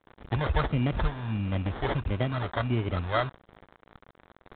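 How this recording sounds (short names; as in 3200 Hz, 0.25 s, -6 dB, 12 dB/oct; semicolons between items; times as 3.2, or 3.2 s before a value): a quantiser's noise floor 8-bit, dither none; phasing stages 2, 1.5 Hz, lowest notch 210–1400 Hz; aliases and images of a low sample rate 2600 Hz, jitter 0%; G.726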